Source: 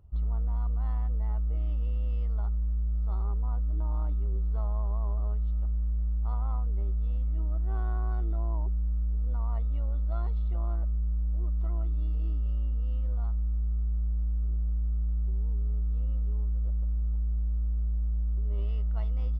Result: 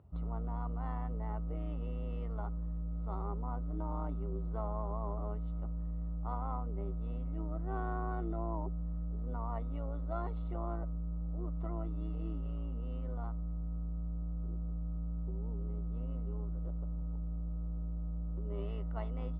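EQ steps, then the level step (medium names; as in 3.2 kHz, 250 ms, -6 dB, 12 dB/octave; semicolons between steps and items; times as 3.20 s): high-pass 140 Hz 12 dB/octave; distance through air 410 m; +5.5 dB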